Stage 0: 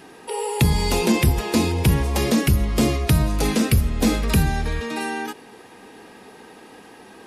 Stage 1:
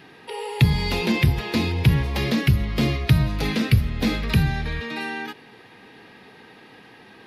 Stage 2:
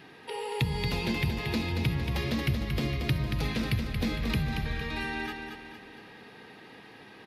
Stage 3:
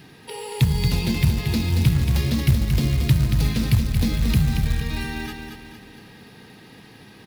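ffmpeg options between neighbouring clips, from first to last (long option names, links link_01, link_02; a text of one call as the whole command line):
ffmpeg -i in.wav -af "equalizer=frequency=125:width_type=o:width=1:gain=10,equalizer=frequency=2000:width_type=o:width=1:gain=7,equalizer=frequency=4000:width_type=o:width=1:gain=8,equalizer=frequency=8000:width_type=o:width=1:gain=-12,volume=-6dB" out.wav
ffmpeg -i in.wav -filter_complex "[0:a]acompressor=threshold=-28dB:ratio=2,asplit=2[link_01][link_02];[link_02]aecho=0:1:229|458|687|916|1145|1374:0.501|0.231|0.106|0.0488|0.0224|0.0103[link_03];[link_01][link_03]amix=inputs=2:normalize=0,volume=-3.5dB" out.wav
ffmpeg -i in.wav -af "bass=frequency=250:gain=12,treble=frequency=4000:gain=11,acrusher=bits=5:mode=log:mix=0:aa=0.000001" out.wav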